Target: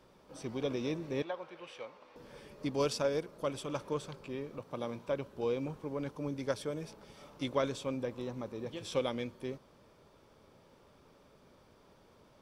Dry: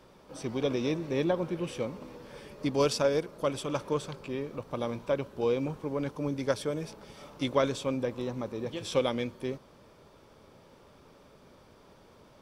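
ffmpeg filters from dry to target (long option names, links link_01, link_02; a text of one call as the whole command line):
ffmpeg -i in.wav -filter_complex "[0:a]asettb=1/sr,asplit=3[link_01][link_02][link_03];[link_01]atrim=end=1.224[link_04];[link_02]atrim=start=1.22:end=2.16,asetpts=PTS-STARTPTS,afade=type=in:duration=0.004:curve=qsin,afade=type=out:start_time=0.936:duration=0.004:curve=qsin,acrossover=split=540 4900:gain=0.0891 1 0.2[link_05][link_06][link_07];[link_05][link_06][link_07]amix=inputs=3:normalize=0[link_08];[link_03]atrim=start=2.156[link_09];[link_04][link_08]acrossfade=duration=0.004:curve1=hsin:curve2=qsin[link_10];[link_10][link_09]acrossfade=duration=0.004:curve1=qsin:curve2=hsin,asettb=1/sr,asplit=3[link_11][link_12][link_13];[link_11]atrim=end=4.594[link_14];[link_12]atrim=start=4.59:end=5.08,asetpts=PTS-STARTPTS,afade=type=in:duration=0.004:curve=qsin,afade=type=out:start_time=0.486:duration=0.004:curve=qsin,highpass=100[link_15];[link_13]atrim=start=5.076[link_16];[link_14][link_15]acrossfade=duration=0.004:curve1=hsin:curve2=qsin[link_17];[link_17][link_16]acrossfade=duration=0.004:curve1=qsin:curve2=hsin,volume=-5.5dB" out.wav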